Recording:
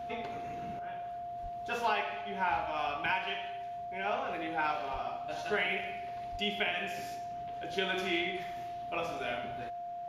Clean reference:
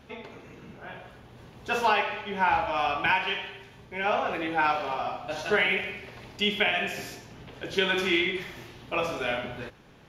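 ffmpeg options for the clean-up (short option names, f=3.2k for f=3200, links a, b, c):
-filter_complex "[0:a]bandreject=f=700:w=30,asplit=3[a][b][c];[a]afade=t=out:st=1.42:d=0.02[d];[b]highpass=f=140:w=0.5412,highpass=f=140:w=1.3066,afade=t=in:st=1.42:d=0.02,afade=t=out:st=1.54:d=0.02[e];[c]afade=t=in:st=1.54:d=0.02[f];[d][e][f]amix=inputs=3:normalize=0,asplit=3[g][h][i];[g]afade=t=out:st=4.92:d=0.02[j];[h]highpass=f=140:w=0.5412,highpass=f=140:w=1.3066,afade=t=in:st=4.92:d=0.02,afade=t=out:st=5.04:d=0.02[k];[i]afade=t=in:st=5.04:d=0.02[l];[j][k][l]amix=inputs=3:normalize=0,asplit=3[m][n][o];[m]afade=t=out:st=6.31:d=0.02[p];[n]highpass=f=140:w=0.5412,highpass=f=140:w=1.3066,afade=t=in:st=6.31:d=0.02,afade=t=out:st=6.43:d=0.02[q];[o]afade=t=in:st=6.43:d=0.02[r];[p][q][r]amix=inputs=3:normalize=0,asetnsamples=n=441:p=0,asendcmd='0.79 volume volume 8dB',volume=0dB"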